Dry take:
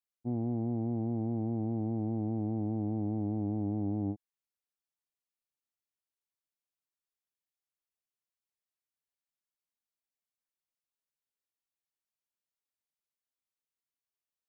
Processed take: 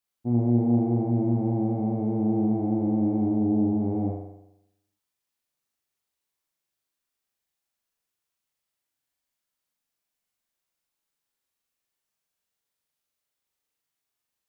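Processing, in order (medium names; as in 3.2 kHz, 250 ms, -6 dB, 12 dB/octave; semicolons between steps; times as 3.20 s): 3.35–3.80 s: low-pass 1.1 kHz 6 dB/octave; on a send: flutter echo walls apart 7.2 m, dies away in 0.84 s; on the sum: trim +6.5 dB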